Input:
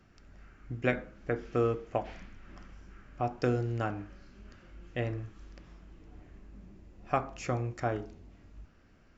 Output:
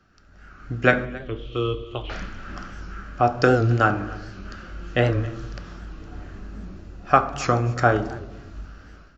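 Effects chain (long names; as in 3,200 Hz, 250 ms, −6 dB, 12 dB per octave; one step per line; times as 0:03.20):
0:01.05–0:02.10: drawn EQ curve 100 Hz 0 dB, 160 Hz −23 dB, 360 Hz −7 dB, 720 Hz −22 dB, 1,100 Hz −9 dB, 1,600 Hz −29 dB, 3,300 Hz +8 dB, 4,800 Hz −17 dB
automatic gain control gain up to 14 dB
single-tap delay 273 ms −21 dB
convolution reverb RT60 1.0 s, pre-delay 3 ms, DRR 13.5 dB
wow of a warped record 78 rpm, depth 100 cents
level −1 dB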